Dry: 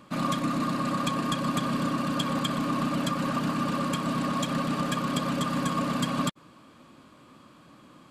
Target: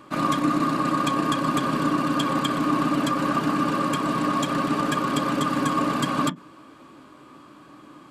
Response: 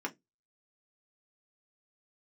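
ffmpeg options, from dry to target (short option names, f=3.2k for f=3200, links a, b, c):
-filter_complex "[0:a]asplit=2[a][b];[1:a]atrim=start_sample=2205,highshelf=f=2.8k:g=-11[c];[b][c]afir=irnorm=-1:irlink=0,volume=-3.5dB[d];[a][d]amix=inputs=2:normalize=0,volume=1.5dB"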